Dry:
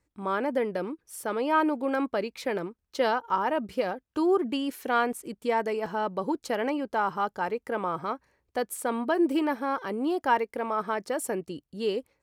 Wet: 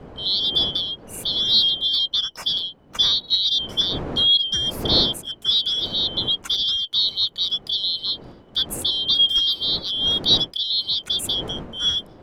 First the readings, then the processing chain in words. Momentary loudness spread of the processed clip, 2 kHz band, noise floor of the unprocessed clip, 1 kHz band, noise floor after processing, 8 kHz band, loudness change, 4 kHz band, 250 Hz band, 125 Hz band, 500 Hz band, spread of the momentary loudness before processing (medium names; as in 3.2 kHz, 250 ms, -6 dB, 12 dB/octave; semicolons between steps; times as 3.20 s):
8 LU, -9.5 dB, -80 dBFS, -12.5 dB, -47 dBFS, +8.0 dB, +9.5 dB, +28.5 dB, -6.0 dB, +10.5 dB, -8.5 dB, 8 LU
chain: four frequency bands reordered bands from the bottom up 3412; wind noise 460 Hz -42 dBFS; trim +6 dB